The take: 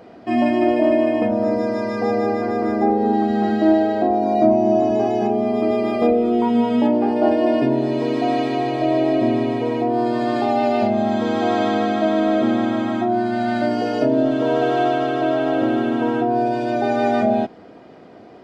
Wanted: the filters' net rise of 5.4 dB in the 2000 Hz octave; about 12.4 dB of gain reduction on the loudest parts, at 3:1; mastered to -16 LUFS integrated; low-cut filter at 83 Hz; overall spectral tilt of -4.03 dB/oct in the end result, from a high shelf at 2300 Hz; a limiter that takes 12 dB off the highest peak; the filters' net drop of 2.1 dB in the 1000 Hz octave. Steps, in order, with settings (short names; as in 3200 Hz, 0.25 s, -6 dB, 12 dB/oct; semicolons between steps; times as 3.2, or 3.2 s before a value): HPF 83 Hz; bell 1000 Hz -5.5 dB; bell 2000 Hz +6.5 dB; high shelf 2300 Hz +5 dB; compressor 3:1, threshold -30 dBFS; gain +21 dB; limiter -8 dBFS